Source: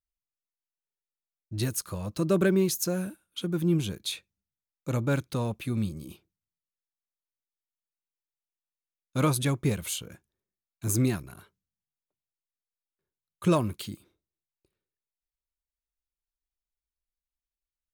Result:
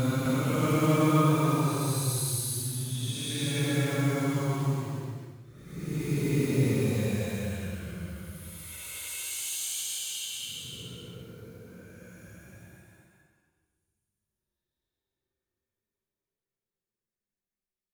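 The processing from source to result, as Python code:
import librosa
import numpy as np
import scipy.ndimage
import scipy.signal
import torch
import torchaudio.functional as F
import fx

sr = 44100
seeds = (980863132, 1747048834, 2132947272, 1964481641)

p1 = fx.quant_float(x, sr, bits=2)
p2 = fx.paulstretch(p1, sr, seeds[0], factor=13.0, window_s=0.1, from_s=9.18)
p3 = p2 + fx.echo_single(p2, sr, ms=258, db=-5.0, dry=0)
y = p3 * 10.0 ** (-3.5 / 20.0)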